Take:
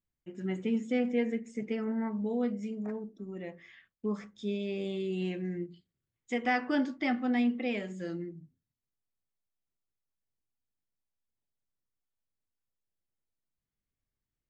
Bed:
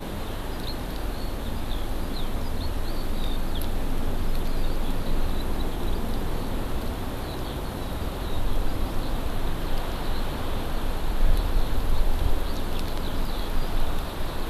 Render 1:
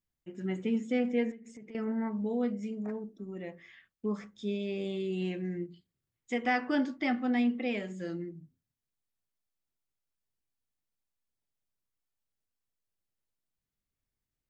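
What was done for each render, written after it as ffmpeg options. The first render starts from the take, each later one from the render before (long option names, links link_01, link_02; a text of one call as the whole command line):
ffmpeg -i in.wav -filter_complex "[0:a]asettb=1/sr,asplit=3[link_01][link_02][link_03];[link_01]atrim=end=1.314[link_04];[link_02]atrim=start=1.31:end=1.75,asetpts=PTS-STARTPTS,afade=type=in:duration=0.004:curve=qsin,afade=type=out:start_time=0.436:duration=0.004:curve=qsin,acompressor=threshold=-45dB:ratio=8:attack=3.2:release=140:knee=1:detection=peak[link_05];[link_03]atrim=start=1.746[link_06];[link_04][link_05]acrossfade=duration=0.004:curve1=hsin:curve2=qsin[link_07];[link_07][link_06]acrossfade=duration=0.004:curve1=qsin:curve2=hsin" out.wav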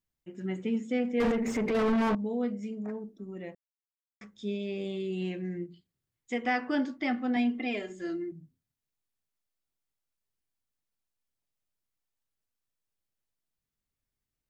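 ffmpeg -i in.wav -filter_complex "[0:a]asettb=1/sr,asplit=3[link_01][link_02][link_03];[link_01]atrim=end=1.204[link_04];[link_02]atrim=start=1.2:end=2.15,asetpts=PTS-STARTPTS,afade=type=in:duration=0.004:curve=qsin,afade=type=out:start_time=0.946:duration=0.004:curve=qsin,asplit=2[link_05][link_06];[link_06]highpass=frequency=720:poles=1,volume=41dB,asoftclip=type=tanh:threshold=-18.5dB[link_07];[link_05][link_07]amix=inputs=2:normalize=0,lowpass=frequency=1100:poles=1,volume=-6dB[link_08];[link_03]atrim=start=2.146[link_09];[link_04][link_08]acrossfade=duration=0.004:curve1=hsin:curve2=qsin[link_10];[link_10][link_09]acrossfade=duration=0.004:curve1=qsin:curve2=hsin,asettb=1/sr,asplit=3[link_11][link_12][link_13];[link_11]atrim=end=7.364[link_14];[link_12]atrim=start=7.36:end=8.32,asetpts=PTS-STARTPTS,afade=type=in:duration=0.004:curve=qsin,afade=type=out:start_time=0.956:duration=0.004:curve=qsin,aecho=1:1:2.9:0.74,atrim=end_sample=42336[link_15];[link_13]atrim=start=8.316[link_16];[link_14][link_15]acrossfade=duration=0.004:curve1=hsin:curve2=qsin[link_17];[link_17][link_16]acrossfade=duration=0.004:curve1=qsin:curve2=hsin,asplit=3[link_18][link_19][link_20];[link_18]atrim=end=3.55,asetpts=PTS-STARTPTS,afade=type=out:start_time=3.546:duration=0.004:curve=hsin[link_21];[link_19]atrim=start=3.55:end=4.21,asetpts=PTS-STARTPTS,volume=0[link_22];[link_20]atrim=start=4.21,asetpts=PTS-STARTPTS,afade=type=in:duration=0.004:curve=hsin[link_23];[link_21][link_22][link_23]concat=n=3:v=0:a=1" out.wav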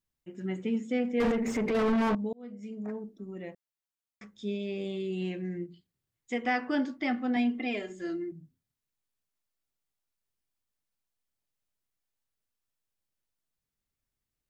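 ffmpeg -i in.wav -filter_complex "[0:a]asplit=2[link_01][link_02];[link_01]atrim=end=2.33,asetpts=PTS-STARTPTS,afade=type=out:start_time=2.326:duration=0.004:curve=hsin[link_03];[link_02]atrim=start=2.33,asetpts=PTS-STARTPTS,afade=type=in:duration=0.55[link_04];[link_03][link_04]concat=n=2:v=0:a=1" out.wav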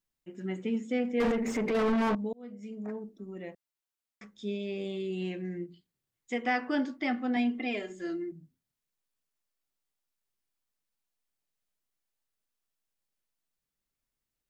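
ffmpeg -i in.wav -af "equalizer=frequency=79:width=0.97:gain=-7.5" out.wav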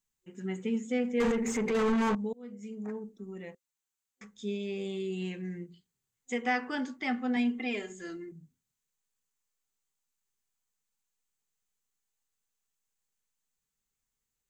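ffmpeg -i in.wav -af "superequalizer=6b=0.447:8b=0.447:15b=2.24" out.wav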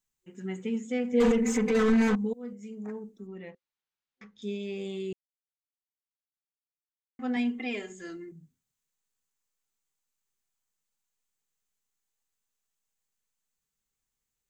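ffmpeg -i in.wav -filter_complex "[0:a]asettb=1/sr,asplit=3[link_01][link_02][link_03];[link_01]atrim=end=1.124[link_04];[link_02]atrim=start=1.12:end=2.53,asetpts=PTS-STARTPTS,afade=type=in:duration=0.004:curve=qsin,afade=type=out:start_time=1.406:duration=0.004:curve=qsin,aecho=1:1:4:0.97,atrim=end_sample=62181[link_05];[link_03]atrim=start=2.526[link_06];[link_04][link_05]acrossfade=duration=0.004:curve1=hsin:curve2=qsin[link_07];[link_07][link_06]acrossfade=duration=0.004:curve1=qsin:curve2=hsin,asettb=1/sr,asplit=3[link_08][link_09][link_10];[link_08]atrim=end=3.274[link_11];[link_09]atrim=start=3.27:end=4.42,asetpts=PTS-STARTPTS,afade=type=in:duration=0.004:curve=qsin,afade=type=out:start_time=1.146:duration=0.004:curve=qsin,lowpass=frequency=4700:width=0.5412,lowpass=frequency=4700:width=1.3066[link_12];[link_10]atrim=start=4.416[link_13];[link_11][link_12]acrossfade=duration=0.004:curve1=hsin:curve2=qsin[link_14];[link_14][link_13]acrossfade=duration=0.004:curve1=qsin:curve2=hsin,asplit=3[link_15][link_16][link_17];[link_15]atrim=end=5.13,asetpts=PTS-STARTPTS,afade=type=out:start_time=5.126:duration=0.004:curve=hsin[link_18];[link_16]atrim=start=5.13:end=7.19,asetpts=PTS-STARTPTS,volume=0[link_19];[link_17]atrim=start=7.19,asetpts=PTS-STARTPTS,afade=type=in:duration=0.004:curve=hsin[link_20];[link_18][link_19][link_20]concat=n=3:v=0:a=1" out.wav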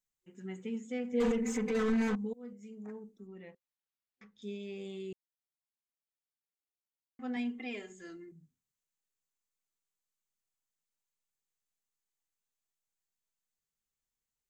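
ffmpeg -i in.wav -af "volume=-7dB" out.wav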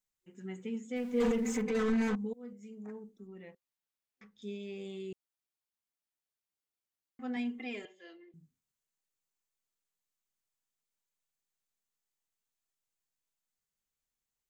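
ffmpeg -i in.wav -filter_complex "[0:a]asettb=1/sr,asplit=3[link_01][link_02][link_03];[link_01]atrim=end=0.964[link_04];[link_02]atrim=start=0.96:end=1.62,asetpts=PTS-STARTPTS,afade=type=in:duration=0.004:curve=qsin,afade=type=out:start_time=0.656:duration=0.004:curve=qsin,aeval=exprs='val(0)+0.5*0.00422*sgn(val(0))':channel_layout=same[link_05];[link_03]atrim=start=1.616[link_06];[link_04][link_05]acrossfade=duration=0.004:curve1=hsin:curve2=qsin[link_07];[link_07][link_06]acrossfade=duration=0.004:curve1=qsin:curve2=hsin,asettb=1/sr,asplit=3[link_08][link_09][link_10];[link_08]atrim=end=7.854[link_11];[link_09]atrim=start=7.85:end=8.34,asetpts=PTS-STARTPTS,afade=type=in:duration=0.004:curve=qsin,afade=type=out:start_time=0.486:duration=0.004:curve=qsin,highpass=frequency=370:width=0.5412,highpass=frequency=370:width=1.3066,equalizer=frequency=390:width_type=q:width=4:gain=-6,equalizer=frequency=580:width_type=q:width=4:gain=6,equalizer=frequency=1400:width_type=q:width=4:gain=-10,equalizer=frequency=3100:width_type=q:width=4:gain=8,lowpass=frequency=4100:width=0.5412,lowpass=frequency=4100:width=1.3066[link_12];[link_10]atrim=start=8.336[link_13];[link_11][link_12]acrossfade=duration=0.004:curve1=hsin:curve2=qsin[link_14];[link_14][link_13]acrossfade=duration=0.004:curve1=qsin:curve2=hsin" out.wav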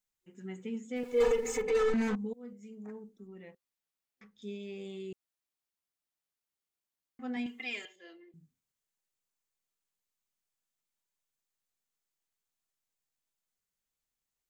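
ffmpeg -i in.wav -filter_complex "[0:a]asettb=1/sr,asplit=3[link_01][link_02][link_03];[link_01]atrim=end=1.034[link_04];[link_02]atrim=start=1.03:end=1.94,asetpts=PTS-STARTPTS,afade=type=in:duration=0.004:curve=qsin,afade=type=out:start_time=0.906:duration=0.004:curve=qsin,aecho=1:1:2.3:0.92,atrim=end_sample=40131[link_05];[link_03]atrim=start=1.936[link_06];[link_04][link_05]acrossfade=duration=0.004:curve1=hsin:curve2=qsin[link_07];[link_07][link_06]acrossfade=duration=0.004:curve1=qsin:curve2=hsin,asettb=1/sr,asplit=3[link_08][link_09][link_10];[link_08]atrim=end=7.464[link_11];[link_09]atrim=start=7.46:end=7.96,asetpts=PTS-STARTPTS,afade=type=in:duration=0.004:curve=qsin,afade=type=out:start_time=0.496:duration=0.004:curve=qsin,tiltshelf=frequency=910:gain=-9[link_12];[link_10]atrim=start=7.956[link_13];[link_11][link_12]acrossfade=duration=0.004:curve1=hsin:curve2=qsin[link_14];[link_14][link_13]acrossfade=duration=0.004:curve1=qsin:curve2=hsin" out.wav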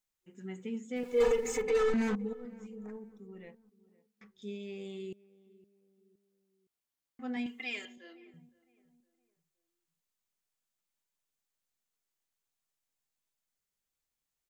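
ffmpeg -i in.wav -filter_complex "[0:a]asplit=2[link_01][link_02];[link_02]adelay=514,lowpass=frequency=1100:poles=1,volume=-20dB,asplit=2[link_03][link_04];[link_04]adelay=514,lowpass=frequency=1100:poles=1,volume=0.45,asplit=2[link_05][link_06];[link_06]adelay=514,lowpass=frequency=1100:poles=1,volume=0.45[link_07];[link_01][link_03][link_05][link_07]amix=inputs=4:normalize=0" out.wav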